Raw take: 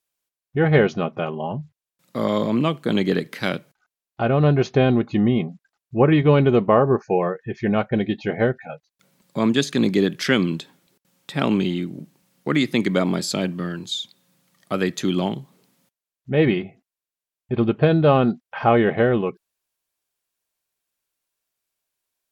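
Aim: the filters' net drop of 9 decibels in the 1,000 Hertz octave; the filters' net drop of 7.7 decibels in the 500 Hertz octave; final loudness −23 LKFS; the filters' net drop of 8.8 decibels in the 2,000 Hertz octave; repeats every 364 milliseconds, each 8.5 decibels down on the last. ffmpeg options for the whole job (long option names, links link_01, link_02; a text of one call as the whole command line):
ffmpeg -i in.wav -af "equalizer=frequency=500:width_type=o:gain=-8,equalizer=frequency=1000:width_type=o:gain=-7,equalizer=frequency=2000:width_type=o:gain=-8.5,aecho=1:1:364|728|1092|1456:0.376|0.143|0.0543|0.0206,volume=1.5dB" out.wav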